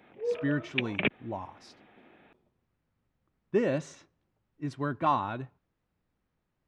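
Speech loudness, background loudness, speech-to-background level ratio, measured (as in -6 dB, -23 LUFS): -32.5 LUFS, -33.0 LUFS, 0.5 dB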